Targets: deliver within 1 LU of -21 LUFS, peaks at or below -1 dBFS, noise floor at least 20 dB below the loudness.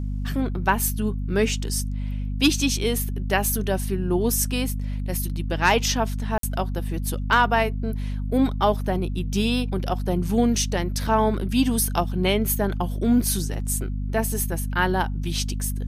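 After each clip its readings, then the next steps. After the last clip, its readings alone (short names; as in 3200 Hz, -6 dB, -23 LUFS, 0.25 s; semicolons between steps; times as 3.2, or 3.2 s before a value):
dropouts 1; longest dropout 53 ms; hum 50 Hz; harmonics up to 250 Hz; hum level -25 dBFS; loudness -24.0 LUFS; peak -6.0 dBFS; loudness target -21.0 LUFS
-> interpolate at 6.38, 53 ms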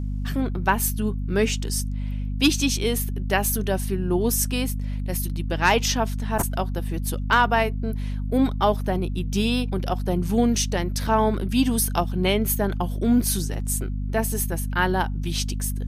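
dropouts 0; hum 50 Hz; harmonics up to 250 Hz; hum level -25 dBFS
-> notches 50/100/150/200/250 Hz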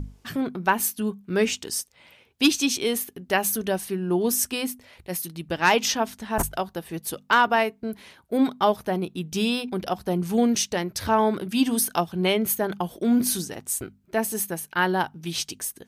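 hum none; loudness -25.0 LUFS; peak -6.5 dBFS; loudness target -21.0 LUFS
-> gain +4 dB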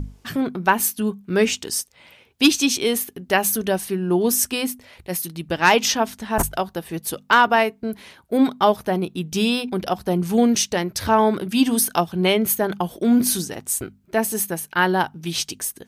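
loudness -21.0 LUFS; peak -2.5 dBFS; noise floor -56 dBFS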